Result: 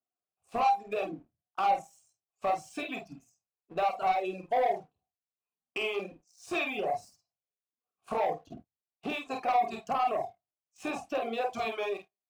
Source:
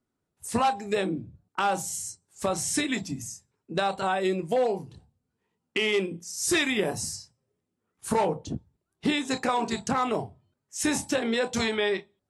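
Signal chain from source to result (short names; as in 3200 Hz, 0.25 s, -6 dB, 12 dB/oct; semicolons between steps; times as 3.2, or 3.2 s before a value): vowel filter a; low shelf 200 Hz +9.5 dB; sample leveller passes 2; on a send: early reflections 49 ms -4.5 dB, 75 ms -15 dB; on the sum: reverb removal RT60 0.74 s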